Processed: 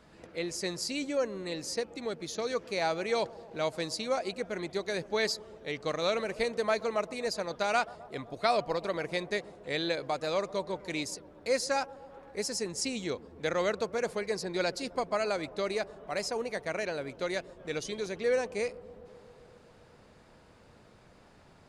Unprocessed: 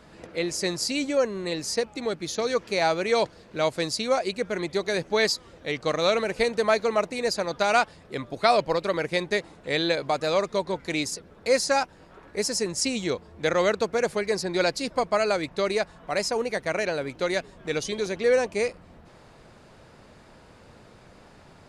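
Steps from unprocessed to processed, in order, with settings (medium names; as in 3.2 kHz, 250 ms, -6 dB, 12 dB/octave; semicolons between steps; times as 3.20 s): 15.45–17.36 s: hard clipper -15 dBFS, distortion -49 dB; on a send: bucket-brigade echo 129 ms, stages 1024, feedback 79%, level -20 dB; on the sum: trim -7 dB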